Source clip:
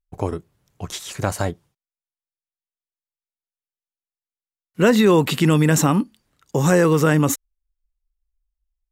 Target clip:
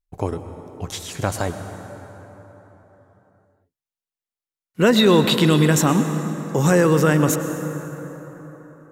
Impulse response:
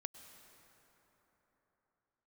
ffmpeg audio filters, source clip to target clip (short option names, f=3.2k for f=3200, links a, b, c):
-filter_complex "[0:a]asettb=1/sr,asplit=3[a][b][c];[a]atrim=end=4.964[d];[b]atrim=start=4.96:end=5.66,asetpts=PTS-STARTPTS,afade=t=in:d=0.004:c=qsin,afade=t=out:st=0.696:d=0.004:c=qsin,equalizer=f=3.8k:w=3.7:g=10[e];[c]atrim=start=5.656[f];[d][e]acrossfade=d=0.004:c1=hsin:c2=qsin[g];[g][f]acrossfade=d=0.004:c1=qsin:c2=hsin[h];[1:a]atrim=start_sample=2205[i];[h][i]afir=irnorm=-1:irlink=0,volume=4dB"